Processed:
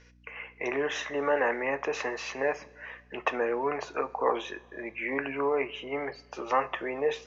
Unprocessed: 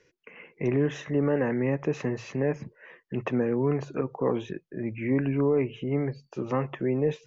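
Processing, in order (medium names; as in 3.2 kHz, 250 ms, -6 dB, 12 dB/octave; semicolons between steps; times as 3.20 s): Chebyshev band-pass 770–5700 Hz, order 2; hum 60 Hz, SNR 26 dB; two-slope reverb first 0.29 s, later 2 s, from -19 dB, DRR 11 dB; trim +7.5 dB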